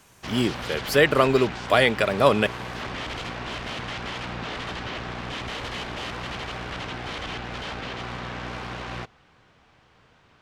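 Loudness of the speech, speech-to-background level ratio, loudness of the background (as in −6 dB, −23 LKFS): −21.5 LKFS, 11.5 dB, −33.0 LKFS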